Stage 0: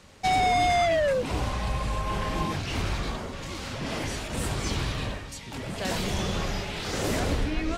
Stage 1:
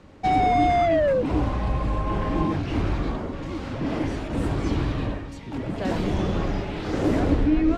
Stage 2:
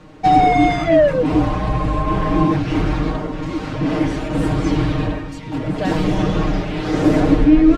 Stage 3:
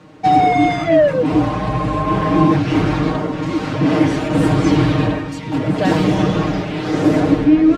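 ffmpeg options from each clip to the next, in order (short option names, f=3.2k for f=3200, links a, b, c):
-af "lowpass=f=1k:p=1,equalizer=f=300:w=4.5:g=9.5,volume=4.5dB"
-af "aecho=1:1:6.5:0.87,volume=4.5dB"
-af "highpass=88,dynaudnorm=f=530:g=5:m=11.5dB"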